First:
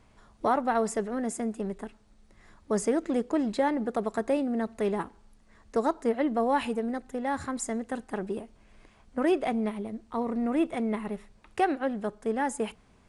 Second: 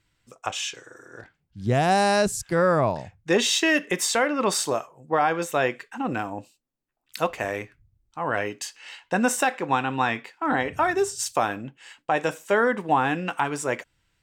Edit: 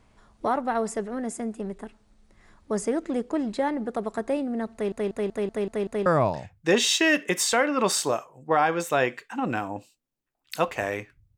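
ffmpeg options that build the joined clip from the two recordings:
-filter_complex "[0:a]apad=whole_dur=11.37,atrim=end=11.37,asplit=7[a][b][c][d][e][f][g];[a]atrim=end=4.922[h];[b]atrim=start=4.728:end=4.922[i];[c]atrim=start=4.728:end=4.922[j];[d]atrim=start=4.728:end=4.922[k];[e]atrim=start=4.728:end=4.922[l];[f]atrim=start=4.728:end=4.922[m];[g]atrim=start=4.728:end=4.922[n];[1:a]atrim=start=2.678:end=7.99[o];[h][i]acrossfade=d=0.004:c1=hsin:c2=hsin[p];[p][j]acrossfade=d=0.004:c1=hsin:c2=hsin[q];[q][k]acrossfade=d=0.004:c1=hsin:c2=hsin[r];[r][l]acrossfade=d=0.004:c1=hsin:c2=hsin[s];[s][m]acrossfade=d=0.004:c1=hsin:c2=hsin[t];[t][n]acrossfade=d=0.004:c1=hsin:c2=hsin[u];[u][o]acrossfade=d=0.004:c1=hsin:c2=hsin"

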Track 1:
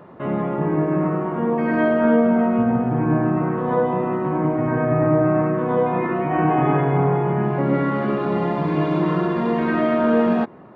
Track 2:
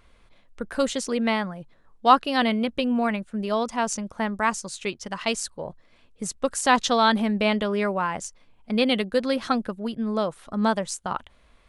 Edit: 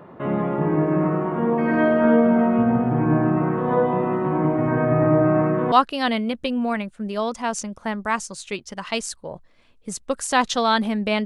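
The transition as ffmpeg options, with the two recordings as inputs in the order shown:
-filter_complex "[0:a]apad=whole_dur=11.25,atrim=end=11.25,atrim=end=5.722[a];[1:a]atrim=start=2.058:end=7.59[b];[a][b]acrossfade=d=0.004:c1=hsin:c2=hsin"

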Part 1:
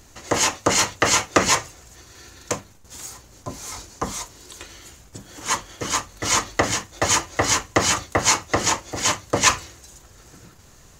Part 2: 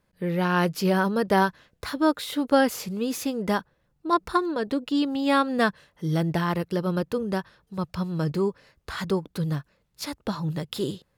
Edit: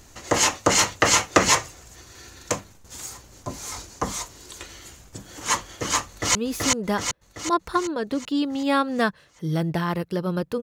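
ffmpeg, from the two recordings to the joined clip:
-filter_complex "[0:a]apad=whole_dur=10.62,atrim=end=10.62,atrim=end=6.352[a];[1:a]atrim=start=2.948:end=7.22[b];[a][b]acrossfade=d=0.004:c1=hsin:c2=hsin,asplit=2[c][d];[d]afade=t=in:st=6.07:d=0.01,afade=t=out:st=6.35:d=0.01,aecho=0:1:380|760|1140|1520|1900|2280|2660|3040:0.891251|0.490188|0.269603|0.148282|0.081555|0.0448553|0.0246704|0.0135687[e];[c][e]amix=inputs=2:normalize=0"

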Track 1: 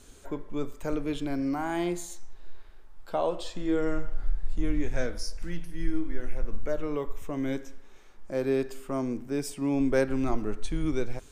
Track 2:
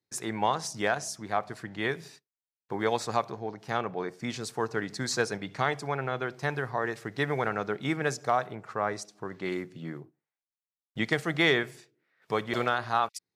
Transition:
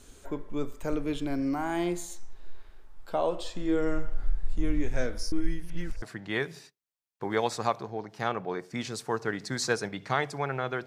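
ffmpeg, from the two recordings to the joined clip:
-filter_complex "[0:a]apad=whole_dur=10.86,atrim=end=10.86,asplit=2[a][b];[a]atrim=end=5.322[c];[b]atrim=start=5.318:end=6.022,asetpts=PTS-STARTPTS,areverse[d];[1:a]atrim=start=1.508:end=6.35[e];[c][d]acrossfade=d=0.004:c1=hsin:c2=hsin[f];[f][e]acrossfade=d=0.004:c1=hsin:c2=hsin"

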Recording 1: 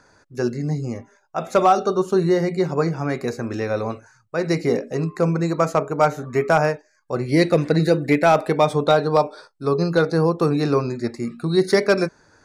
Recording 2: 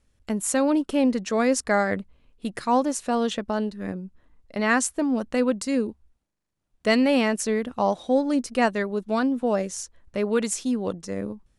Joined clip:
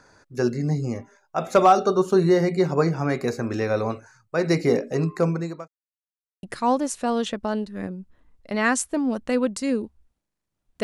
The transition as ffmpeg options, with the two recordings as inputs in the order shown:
-filter_complex "[0:a]apad=whole_dur=10.83,atrim=end=10.83,asplit=2[a][b];[a]atrim=end=5.68,asetpts=PTS-STARTPTS,afade=t=out:st=5.12:d=0.56[c];[b]atrim=start=5.68:end=6.43,asetpts=PTS-STARTPTS,volume=0[d];[1:a]atrim=start=2.48:end=6.88,asetpts=PTS-STARTPTS,afade=t=in:d=0.004:c=hsin[e];[c][d][e]concat=n=3:v=0:a=1"

